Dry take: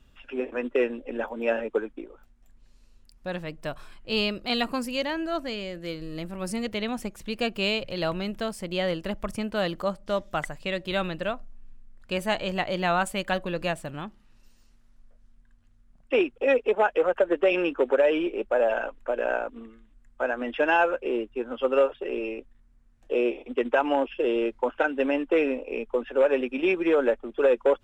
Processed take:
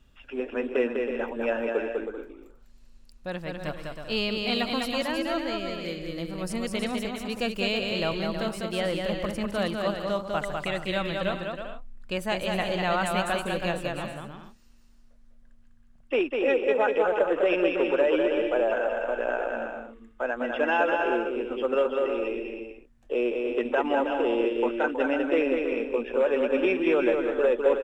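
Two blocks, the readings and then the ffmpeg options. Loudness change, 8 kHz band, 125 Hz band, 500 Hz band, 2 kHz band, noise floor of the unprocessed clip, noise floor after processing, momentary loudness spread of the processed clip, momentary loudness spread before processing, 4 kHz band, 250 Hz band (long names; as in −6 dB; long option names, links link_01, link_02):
0.0 dB, +1.0 dB, +1.0 dB, 0.0 dB, 0.0 dB, −58 dBFS, −54 dBFS, 11 LU, 12 LU, +0.5 dB, +0.5 dB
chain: -filter_complex "[0:a]asplit=2[link_01][link_02];[link_02]alimiter=limit=-17dB:level=0:latency=1,volume=-3dB[link_03];[link_01][link_03]amix=inputs=2:normalize=0,aecho=1:1:200|320|392|435.2|461.1:0.631|0.398|0.251|0.158|0.1,volume=-6dB"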